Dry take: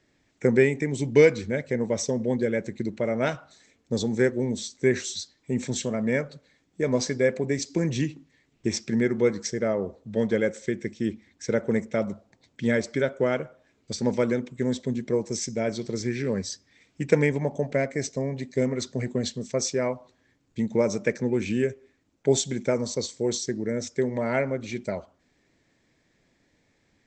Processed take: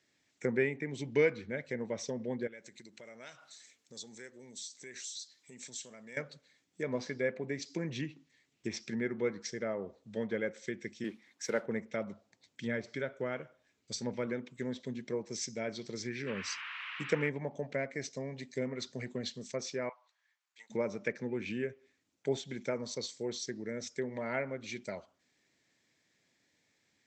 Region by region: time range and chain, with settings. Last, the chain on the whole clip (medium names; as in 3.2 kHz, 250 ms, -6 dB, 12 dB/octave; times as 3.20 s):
2.47–6.17 s: tilt EQ +2 dB/octave + compression 2.5:1, threshold -44 dBFS
11.04–11.66 s: high-pass 170 Hz + peaking EQ 1 kHz +7 dB 1.7 oct + modulation noise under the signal 23 dB
12.65–14.27 s: bass shelf 86 Hz +8.5 dB + feedback comb 60 Hz, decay 0.37 s, mix 30%
16.26–17.28 s: gate -56 dBFS, range -24 dB + band noise 1–2.8 kHz -38 dBFS
19.89–20.70 s: high-pass 960 Hz 24 dB/octave + tilt EQ -3 dB/octave
whole clip: low-pass that closes with the level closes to 2.2 kHz, closed at -21 dBFS; high-pass 100 Hz; tilt shelf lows -5.5 dB, about 1.5 kHz; trim -6.5 dB